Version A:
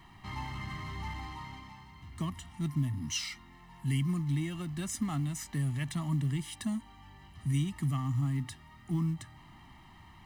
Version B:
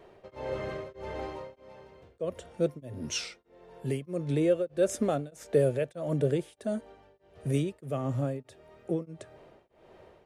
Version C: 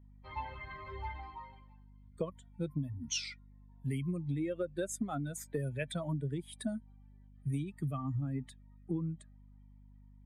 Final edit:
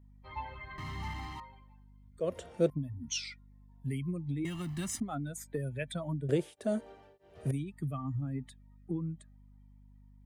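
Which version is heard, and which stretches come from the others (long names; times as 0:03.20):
C
0:00.78–0:01.40: punch in from A
0:02.20–0:02.70: punch in from B
0:04.45–0:05.00: punch in from A
0:06.29–0:07.51: punch in from B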